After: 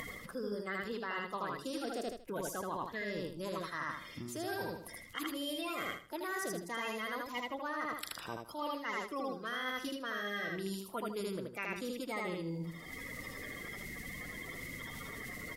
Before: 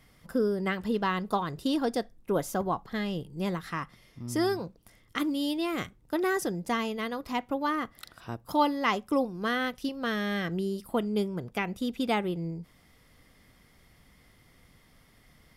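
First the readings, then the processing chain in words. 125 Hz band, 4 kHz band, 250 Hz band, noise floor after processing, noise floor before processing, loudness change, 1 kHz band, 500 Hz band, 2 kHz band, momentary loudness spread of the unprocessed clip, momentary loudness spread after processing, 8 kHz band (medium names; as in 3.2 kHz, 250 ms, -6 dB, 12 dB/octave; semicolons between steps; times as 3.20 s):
-9.5 dB, -5.5 dB, -12.0 dB, -51 dBFS, -61 dBFS, -9.0 dB, -8.5 dB, -9.0 dB, -3.5 dB, 8 LU, 6 LU, -2.0 dB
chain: coarse spectral quantiser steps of 30 dB; bass shelf 420 Hz -9 dB; on a send: feedback delay 78 ms, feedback 30%, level -3 dB; on the sum: upward compressor, threshold -36 dBFS; peaking EQ 750 Hz -5.5 dB 0.4 oct; reverse; compression 6:1, threshold -41 dBFS, peak gain reduction 17.5 dB; reverse; trim +4.5 dB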